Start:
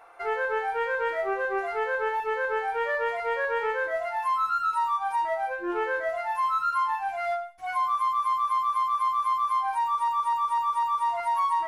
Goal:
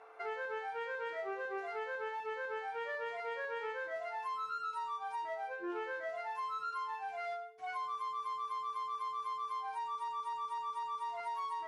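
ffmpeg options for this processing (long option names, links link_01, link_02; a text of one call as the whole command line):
ffmpeg -i in.wav -filter_complex "[0:a]acrossover=split=240|3000[link_01][link_02][link_03];[link_02]acompressor=threshold=-35dB:ratio=3[link_04];[link_01][link_04][link_03]amix=inputs=3:normalize=0,aeval=exprs='val(0)+0.002*sin(2*PI*440*n/s)':channel_layout=same,highpass=160,lowpass=6300,volume=-5.5dB" out.wav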